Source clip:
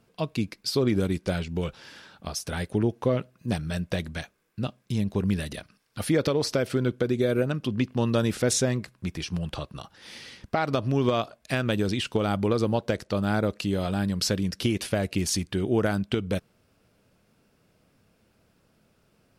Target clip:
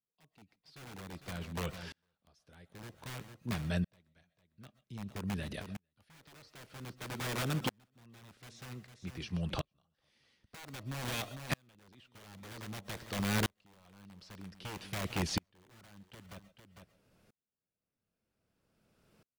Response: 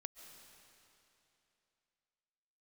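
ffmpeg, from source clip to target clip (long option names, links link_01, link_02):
-filter_complex "[0:a]acrossover=split=4700[link_01][link_02];[link_02]acompressor=threshold=-50dB:ratio=4:attack=1:release=60[link_03];[link_01][link_03]amix=inputs=2:normalize=0,acrossover=split=200|1600[link_04][link_05][link_06];[link_05]aeval=exprs='(mod(16.8*val(0)+1,2)-1)/16.8':channel_layout=same[link_07];[link_04][link_07][link_06]amix=inputs=3:normalize=0,aecho=1:1:452:0.168[link_08];[1:a]atrim=start_sample=2205,atrim=end_sample=6174[link_09];[link_08][link_09]afir=irnorm=-1:irlink=0,aeval=exprs='val(0)*pow(10,-39*if(lt(mod(-0.52*n/s,1),2*abs(-0.52)/1000),1-mod(-0.52*n/s,1)/(2*abs(-0.52)/1000),(mod(-0.52*n/s,1)-2*abs(-0.52)/1000)/(1-2*abs(-0.52)/1000))/20)':channel_layout=same,volume=4.5dB"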